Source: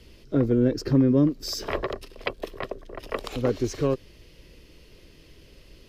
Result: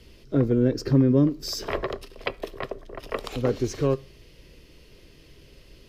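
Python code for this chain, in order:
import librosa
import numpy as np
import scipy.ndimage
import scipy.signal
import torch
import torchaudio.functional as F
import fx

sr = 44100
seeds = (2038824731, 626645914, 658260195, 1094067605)

y = fx.rev_fdn(x, sr, rt60_s=0.44, lf_ratio=1.0, hf_ratio=0.8, size_ms=44.0, drr_db=15.5)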